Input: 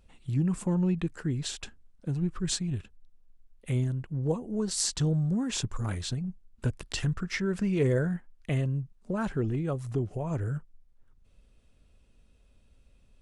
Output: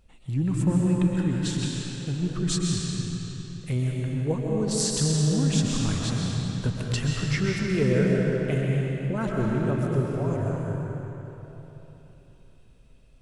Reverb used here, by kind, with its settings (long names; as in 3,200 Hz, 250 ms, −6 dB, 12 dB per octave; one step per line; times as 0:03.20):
comb and all-pass reverb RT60 3.6 s, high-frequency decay 0.85×, pre-delay 90 ms, DRR −2.5 dB
level +1 dB